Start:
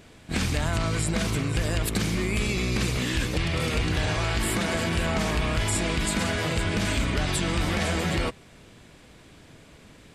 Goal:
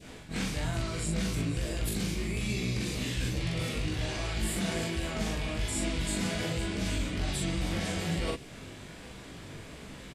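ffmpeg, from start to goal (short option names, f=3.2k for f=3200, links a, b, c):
-filter_complex "[0:a]adynamicequalizer=threshold=0.00562:dfrequency=1200:dqfactor=0.82:tfrequency=1200:tqfactor=0.82:attack=5:release=100:ratio=0.375:range=3.5:mode=cutabove:tftype=bell,areverse,acompressor=threshold=-33dB:ratio=12,areverse,flanger=delay=15:depth=5.2:speed=1.2,asplit=2[a][b];[b]adelay=42,volume=-2dB[c];[a][c]amix=inputs=2:normalize=0,volume=6dB"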